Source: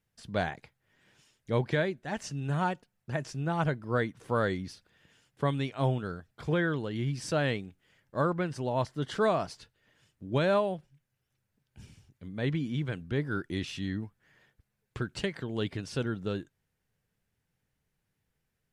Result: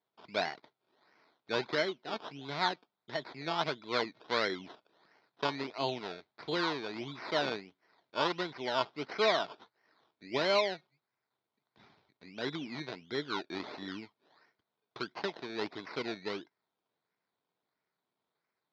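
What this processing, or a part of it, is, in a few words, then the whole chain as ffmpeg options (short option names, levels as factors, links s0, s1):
circuit-bent sampling toy: -af "acrusher=samples=17:mix=1:aa=0.000001:lfo=1:lforange=10.2:lforate=1.5,lowpass=f=6200:w=0.5412,lowpass=f=6200:w=1.3066,highpass=510,equalizer=f=530:t=q:w=4:g=-9,equalizer=f=790:t=q:w=4:g=-5,equalizer=f=1200:t=q:w=4:g=-6,equalizer=f=1700:t=q:w=4:g=-7,equalizer=f=2800:t=q:w=4:g=-9,equalizer=f=4000:t=q:w=4:g=3,lowpass=f=4300:w=0.5412,lowpass=f=4300:w=1.3066,volume=1.78"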